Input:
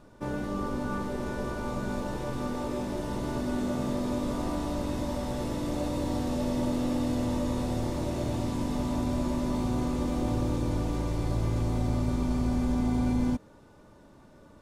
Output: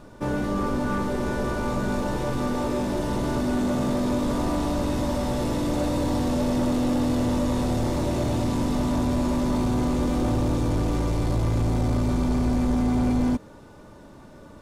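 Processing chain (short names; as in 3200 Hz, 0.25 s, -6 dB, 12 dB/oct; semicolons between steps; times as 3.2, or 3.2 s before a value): soft clip -25.5 dBFS, distortion -14 dB; gain +8 dB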